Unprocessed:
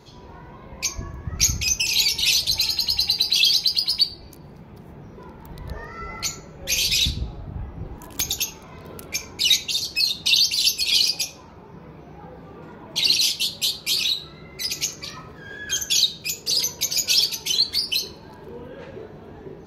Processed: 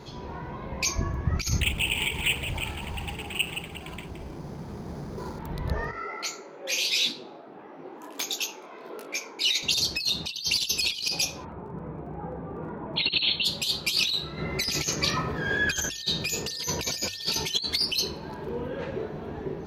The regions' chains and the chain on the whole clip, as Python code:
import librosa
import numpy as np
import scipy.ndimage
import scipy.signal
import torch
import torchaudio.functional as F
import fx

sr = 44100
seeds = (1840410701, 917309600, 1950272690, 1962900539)

y = fx.chain(x, sr, fx.resample_bad(factor=8, down='filtered', up='hold'),
    fx.echo_single(ms=169, db=-10.0),
    fx.doppler_dist(depth_ms=0.72), at=(1.6, 5.39))
y = fx.chain(y, sr, fx.highpass(hz=300.0, slope=24),
    fx.high_shelf(hz=3800.0, db=-6.5),
    fx.detune_double(cents=55), at=(5.91, 9.63))
y = fx.env_lowpass(y, sr, base_hz=1000.0, full_db=-19.0, at=(11.44, 13.44), fade=0.02)
y = fx.brickwall_lowpass(y, sr, high_hz=4400.0, at=(11.44, 13.44), fade=0.02)
y = fx.dmg_crackle(y, sr, seeds[0], per_s=19.0, level_db=-53.0, at=(11.44, 13.44), fade=0.02)
y = fx.over_compress(y, sr, threshold_db=-32.0, ratio=-1.0, at=(14.37, 17.54), fade=0.02)
y = fx.dmg_tone(y, sr, hz=1800.0, level_db=-55.0, at=(14.37, 17.54), fade=0.02)
y = fx.high_shelf(y, sr, hz=5100.0, db=-6.5)
y = fx.hum_notches(y, sr, base_hz=50, count=2)
y = fx.over_compress(y, sr, threshold_db=-27.0, ratio=-0.5)
y = y * 10.0 ** (3.0 / 20.0)